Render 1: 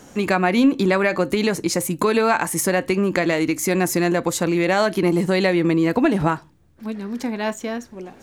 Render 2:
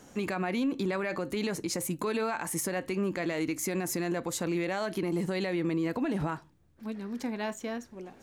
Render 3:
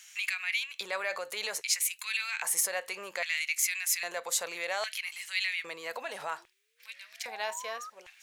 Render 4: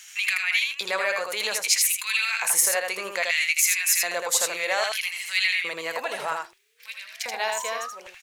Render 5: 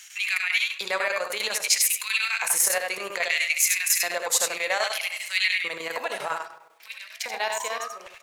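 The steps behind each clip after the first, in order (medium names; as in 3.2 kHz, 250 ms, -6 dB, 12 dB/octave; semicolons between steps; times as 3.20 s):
peak limiter -14 dBFS, peak gain reduction 8 dB; trim -8.5 dB
painted sound rise, 5.93–7.90 s, 220–1300 Hz -44 dBFS; LFO high-pass square 0.62 Hz 510–2300 Hz; amplifier tone stack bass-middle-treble 10-0-10; trim +7 dB
delay 80 ms -4 dB; trim +7 dB
reverberation RT60 1.1 s, pre-delay 33 ms, DRR 12 dB; square tremolo 10 Hz, depth 60%, duty 80%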